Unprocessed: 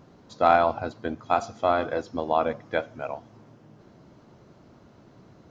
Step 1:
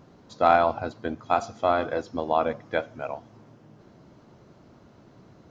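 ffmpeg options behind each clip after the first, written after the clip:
-af anull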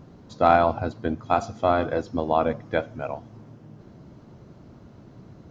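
-af "lowshelf=f=280:g=9.5"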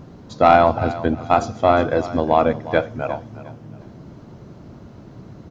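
-af "asoftclip=type=tanh:threshold=-7dB,aecho=1:1:357|714|1071:0.168|0.0453|0.0122,volume=6.5dB"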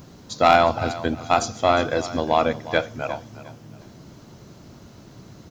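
-af "crystalizer=i=6:c=0,volume=-5dB"

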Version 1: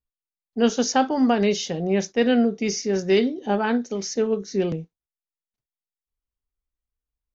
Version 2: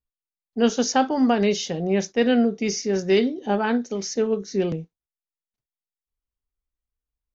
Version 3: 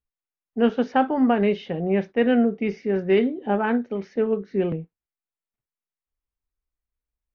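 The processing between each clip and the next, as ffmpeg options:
-af anull
-af "lowpass=f=2.6k:w=0.5412,lowpass=f=2.6k:w=1.3066"

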